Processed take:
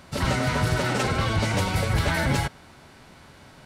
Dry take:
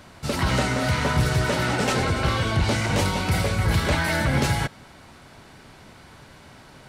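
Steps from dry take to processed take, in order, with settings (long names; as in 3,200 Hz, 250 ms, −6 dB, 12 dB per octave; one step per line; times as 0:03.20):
phase-vocoder stretch with locked phases 0.53×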